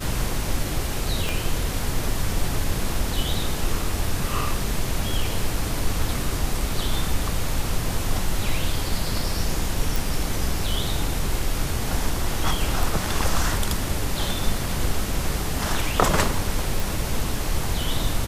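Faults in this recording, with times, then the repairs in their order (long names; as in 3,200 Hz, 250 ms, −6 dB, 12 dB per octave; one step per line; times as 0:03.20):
0:01.29: click
0:09.96: click
0:16.80: click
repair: click removal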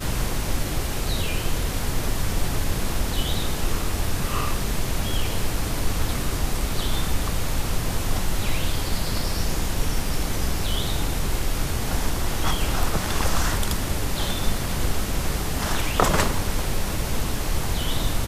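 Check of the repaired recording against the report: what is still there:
none of them is left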